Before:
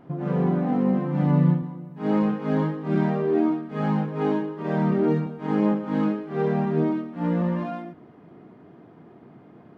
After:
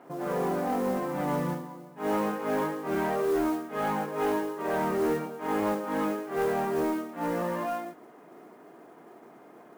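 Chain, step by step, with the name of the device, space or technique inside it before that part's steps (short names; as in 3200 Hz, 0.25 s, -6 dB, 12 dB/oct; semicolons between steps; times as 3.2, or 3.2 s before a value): carbon microphone (BPF 440–2900 Hz; soft clip -24.5 dBFS, distortion -15 dB; modulation noise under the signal 22 dB); gain +3.5 dB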